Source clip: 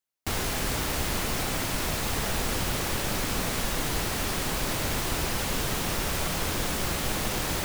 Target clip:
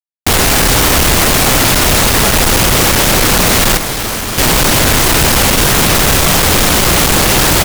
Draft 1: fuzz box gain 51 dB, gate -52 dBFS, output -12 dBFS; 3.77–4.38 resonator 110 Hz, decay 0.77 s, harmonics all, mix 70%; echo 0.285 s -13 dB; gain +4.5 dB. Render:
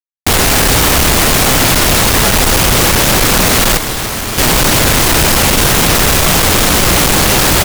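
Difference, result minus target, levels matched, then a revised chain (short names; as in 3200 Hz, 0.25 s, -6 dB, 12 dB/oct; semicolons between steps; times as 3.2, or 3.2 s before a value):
echo 0.103 s early
fuzz box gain 51 dB, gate -52 dBFS, output -12 dBFS; 3.77–4.38 resonator 110 Hz, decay 0.77 s, harmonics all, mix 70%; echo 0.388 s -13 dB; gain +4.5 dB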